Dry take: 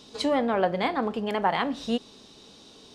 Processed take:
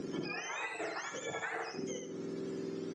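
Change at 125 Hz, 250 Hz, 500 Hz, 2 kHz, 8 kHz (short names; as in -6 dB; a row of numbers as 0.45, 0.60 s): -8.5, -12.5, -12.5, -5.5, +2.0 dB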